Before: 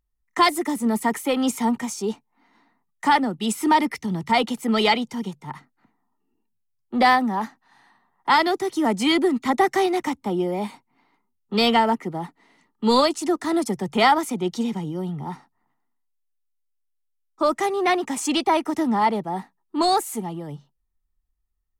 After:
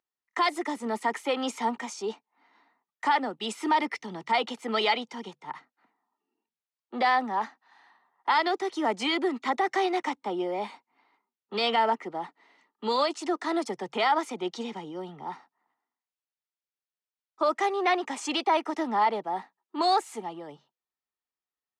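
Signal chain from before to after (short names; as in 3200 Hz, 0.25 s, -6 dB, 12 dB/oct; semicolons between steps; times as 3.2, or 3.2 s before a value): limiter -13 dBFS, peak gain reduction 7.5 dB; BPF 430–5000 Hz; gain -1.5 dB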